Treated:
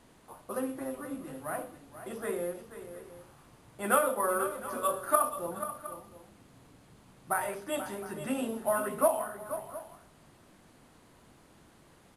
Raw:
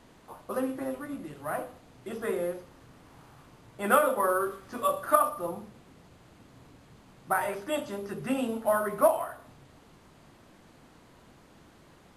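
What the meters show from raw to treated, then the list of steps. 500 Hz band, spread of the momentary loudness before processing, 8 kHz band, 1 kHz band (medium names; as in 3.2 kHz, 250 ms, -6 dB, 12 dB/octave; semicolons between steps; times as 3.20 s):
-3.0 dB, 15 LU, +4.0 dB, -3.0 dB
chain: peaking EQ 10 kHz +7.5 dB 0.61 oct; on a send: multi-tap echo 483/712 ms -11.5/-17 dB; on the sum: trim -3.5 dB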